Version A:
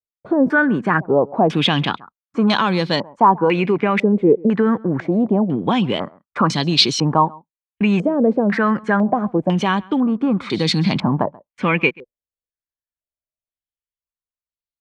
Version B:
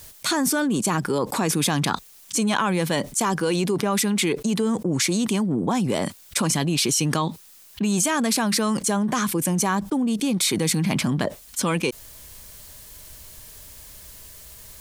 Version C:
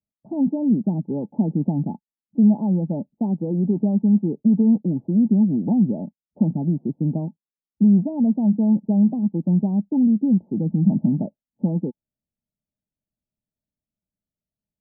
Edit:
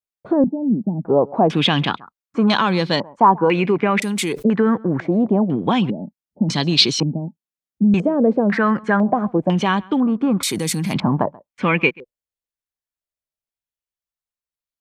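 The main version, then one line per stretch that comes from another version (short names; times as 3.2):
A
0.44–1.05 from C
4.02–4.44 from B
5.9–6.49 from C
7.03–7.94 from C
10.43–10.94 from B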